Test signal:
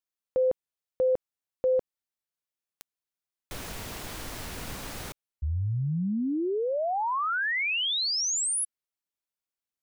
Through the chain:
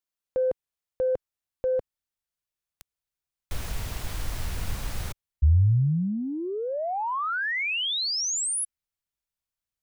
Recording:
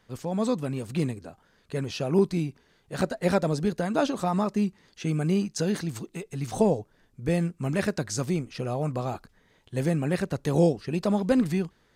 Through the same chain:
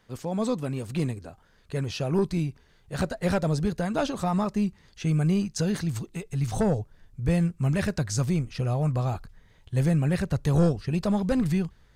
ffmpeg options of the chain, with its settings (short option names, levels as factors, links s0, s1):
-af "aeval=exprs='0.335*sin(PI/2*1.41*val(0)/0.335)':c=same,asubboost=boost=5:cutoff=120,volume=0.473"